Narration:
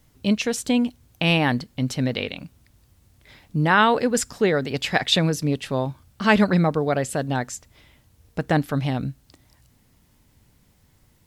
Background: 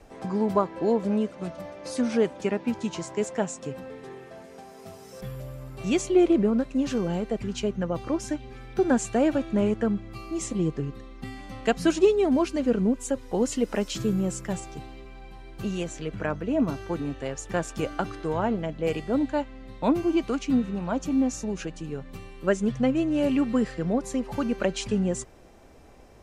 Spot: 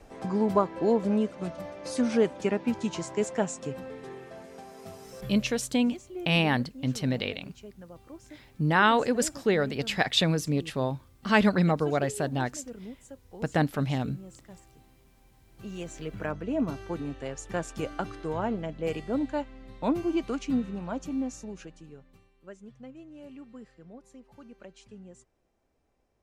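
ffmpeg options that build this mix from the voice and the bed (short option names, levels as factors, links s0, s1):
-filter_complex "[0:a]adelay=5050,volume=0.596[s0];[1:a]volume=5.31,afade=t=out:st=5.11:d=0.67:silence=0.11885,afade=t=in:st=15.47:d=0.54:silence=0.177828,afade=t=out:st=20.51:d=1.8:silence=0.11885[s1];[s0][s1]amix=inputs=2:normalize=0"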